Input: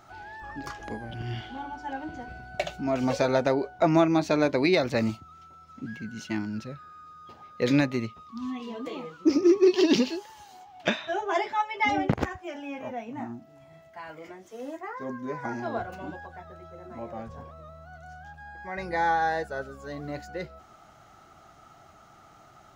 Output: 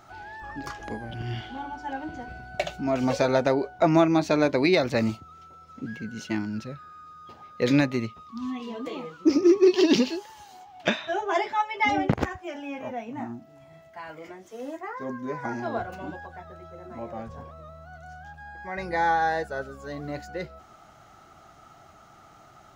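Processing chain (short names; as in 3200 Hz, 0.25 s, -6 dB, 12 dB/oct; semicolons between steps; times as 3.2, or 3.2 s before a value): 5.11–6.35 bell 470 Hz +7.5 dB 0.5 oct; gain +1.5 dB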